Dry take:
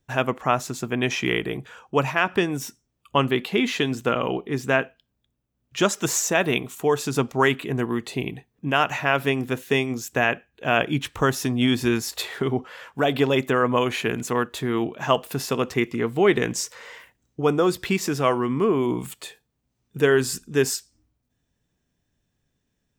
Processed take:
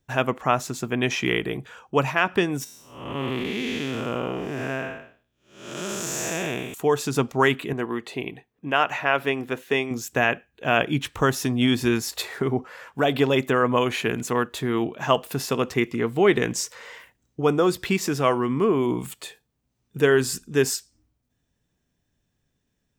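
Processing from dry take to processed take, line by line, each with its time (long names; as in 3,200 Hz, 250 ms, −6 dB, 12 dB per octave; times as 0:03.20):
0:02.64–0:06.74: spectrum smeared in time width 329 ms
0:07.73–0:09.91: bass and treble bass −9 dB, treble −7 dB
0:12.22–0:12.87: parametric band 3,200 Hz −8.5 dB 0.44 octaves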